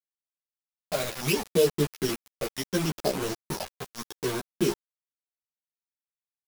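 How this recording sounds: a buzz of ramps at a fixed pitch in blocks of 8 samples; phasing stages 12, 0.73 Hz, lowest notch 300–2200 Hz; a quantiser's noise floor 6-bit, dither none; a shimmering, thickened sound

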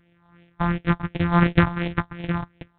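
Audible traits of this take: a buzz of ramps at a fixed pitch in blocks of 256 samples; phasing stages 4, 2.8 Hz, lowest notch 420–1100 Hz; G.726

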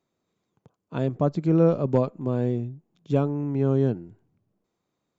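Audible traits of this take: noise floor -80 dBFS; spectral tilt -7.0 dB/oct

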